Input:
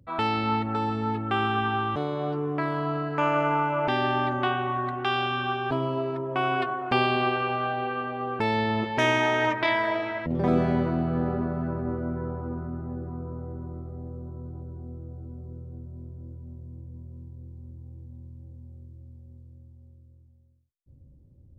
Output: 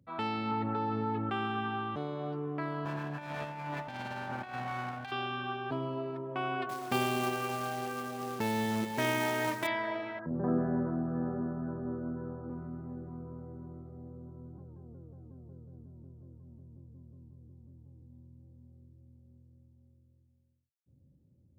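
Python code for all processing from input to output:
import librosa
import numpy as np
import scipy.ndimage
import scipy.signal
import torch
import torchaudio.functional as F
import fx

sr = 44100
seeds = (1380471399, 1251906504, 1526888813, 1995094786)

y = fx.chain(x, sr, fx.lowpass(hz=3600.0, slope=12),
    fx.comb(ms=7.0, depth=0.34),
    fx.env_flatten(amount_pct=70), at=(0.51, 1.3))
y = fx.chain(y, sr, fx.lower_of_two(delay_ms=1.2),
    fx.over_compress(threshold_db=-29.0, ratio=-0.5),
    fx.peak_eq(hz=6000.0, db=-3.0, octaves=2.4), at=(2.85, 5.12))
y = fx.chain(y, sr, fx.highpass(hz=45.0, slope=12),
    fx.low_shelf(hz=310.0, db=3.0),
    fx.quant_companded(bits=4), at=(6.69, 9.67))
y = fx.chain(y, sr, fx.cheby1_lowpass(hz=1700.0, order=6),
    fx.doubler(ms=33.0, db=-11.0), at=(10.19, 12.5))
y = fx.chain(y, sr, fx.hum_notches(base_hz=50, count=9),
    fx.vibrato_shape(shape='saw_down', rate_hz=5.5, depth_cents=160.0), at=(14.58, 18.02))
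y = scipy.signal.sosfilt(scipy.signal.butter(2, 100.0, 'highpass', fs=sr, output='sos'), y)
y = fx.peak_eq(y, sr, hz=190.0, db=4.5, octaves=0.94)
y = y * 10.0 ** (-9.0 / 20.0)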